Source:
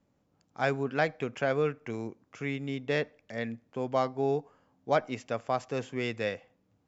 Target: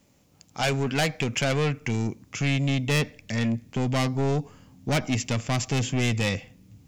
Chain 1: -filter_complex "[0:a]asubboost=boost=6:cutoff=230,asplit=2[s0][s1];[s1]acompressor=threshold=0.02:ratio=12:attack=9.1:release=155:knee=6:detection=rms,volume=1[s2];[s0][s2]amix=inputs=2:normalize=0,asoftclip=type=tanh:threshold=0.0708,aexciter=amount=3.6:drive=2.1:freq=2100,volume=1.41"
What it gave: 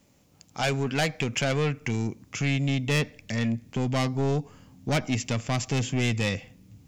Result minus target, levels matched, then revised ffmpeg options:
compression: peak gain reduction +9 dB
-filter_complex "[0:a]asubboost=boost=6:cutoff=230,asplit=2[s0][s1];[s1]acompressor=threshold=0.0631:ratio=12:attack=9.1:release=155:knee=6:detection=rms,volume=1[s2];[s0][s2]amix=inputs=2:normalize=0,asoftclip=type=tanh:threshold=0.0708,aexciter=amount=3.6:drive=2.1:freq=2100,volume=1.41"

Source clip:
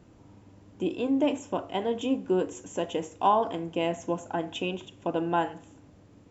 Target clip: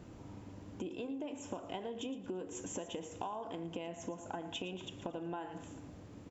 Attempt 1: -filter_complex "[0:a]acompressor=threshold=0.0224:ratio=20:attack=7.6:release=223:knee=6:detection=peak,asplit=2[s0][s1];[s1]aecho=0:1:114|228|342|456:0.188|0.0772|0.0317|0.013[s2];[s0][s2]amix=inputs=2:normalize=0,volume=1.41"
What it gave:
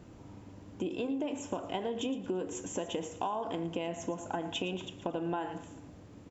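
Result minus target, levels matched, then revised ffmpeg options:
compression: peak gain reduction -7 dB
-filter_complex "[0:a]acompressor=threshold=0.00944:ratio=20:attack=7.6:release=223:knee=6:detection=peak,asplit=2[s0][s1];[s1]aecho=0:1:114|228|342|456:0.188|0.0772|0.0317|0.013[s2];[s0][s2]amix=inputs=2:normalize=0,volume=1.41"

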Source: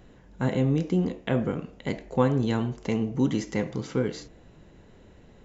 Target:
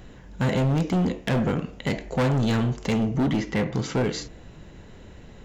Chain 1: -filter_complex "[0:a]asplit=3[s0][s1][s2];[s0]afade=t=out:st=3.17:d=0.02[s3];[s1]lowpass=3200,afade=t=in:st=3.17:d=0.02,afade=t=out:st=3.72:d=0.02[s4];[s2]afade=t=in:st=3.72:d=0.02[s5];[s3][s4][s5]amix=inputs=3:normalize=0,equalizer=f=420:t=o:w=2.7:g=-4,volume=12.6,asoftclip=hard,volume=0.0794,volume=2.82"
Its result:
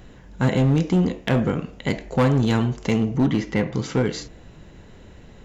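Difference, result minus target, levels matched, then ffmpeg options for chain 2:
overload inside the chain: distortion -7 dB
-filter_complex "[0:a]asplit=3[s0][s1][s2];[s0]afade=t=out:st=3.17:d=0.02[s3];[s1]lowpass=3200,afade=t=in:st=3.17:d=0.02,afade=t=out:st=3.72:d=0.02[s4];[s2]afade=t=in:st=3.72:d=0.02[s5];[s3][s4][s5]amix=inputs=3:normalize=0,equalizer=f=420:t=o:w=2.7:g=-4,volume=25.1,asoftclip=hard,volume=0.0398,volume=2.82"

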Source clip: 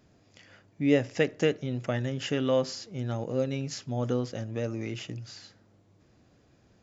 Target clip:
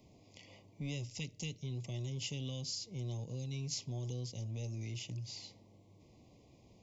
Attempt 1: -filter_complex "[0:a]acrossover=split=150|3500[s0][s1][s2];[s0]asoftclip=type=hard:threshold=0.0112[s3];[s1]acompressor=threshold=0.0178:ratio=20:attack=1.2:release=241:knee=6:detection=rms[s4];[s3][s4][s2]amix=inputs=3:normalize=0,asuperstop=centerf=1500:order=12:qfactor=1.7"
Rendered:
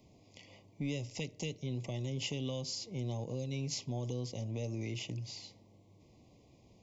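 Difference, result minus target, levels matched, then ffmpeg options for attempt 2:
compression: peak gain reduction -10 dB
-filter_complex "[0:a]acrossover=split=150|3500[s0][s1][s2];[s0]asoftclip=type=hard:threshold=0.0112[s3];[s1]acompressor=threshold=0.00531:ratio=20:attack=1.2:release=241:knee=6:detection=rms[s4];[s3][s4][s2]amix=inputs=3:normalize=0,asuperstop=centerf=1500:order=12:qfactor=1.7"

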